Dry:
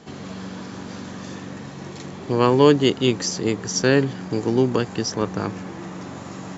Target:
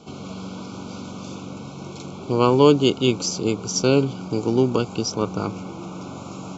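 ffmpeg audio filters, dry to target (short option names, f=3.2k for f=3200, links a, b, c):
-af "asuperstop=centerf=1800:order=20:qfactor=2.7"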